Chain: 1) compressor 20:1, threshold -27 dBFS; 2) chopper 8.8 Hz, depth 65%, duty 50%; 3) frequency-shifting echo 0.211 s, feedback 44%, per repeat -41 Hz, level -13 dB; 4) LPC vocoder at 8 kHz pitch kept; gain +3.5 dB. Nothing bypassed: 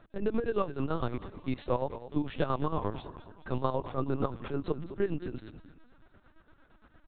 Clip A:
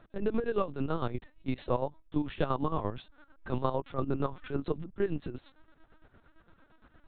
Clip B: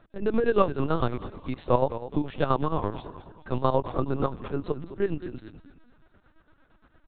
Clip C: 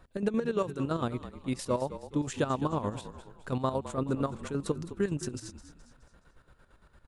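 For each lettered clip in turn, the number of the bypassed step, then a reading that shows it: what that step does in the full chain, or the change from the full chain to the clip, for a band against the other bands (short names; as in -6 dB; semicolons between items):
3, momentary loudness spread change -1 LU; 1, mean gain reduction 3.0 dB; 4, 4 kHz band +2.5 dB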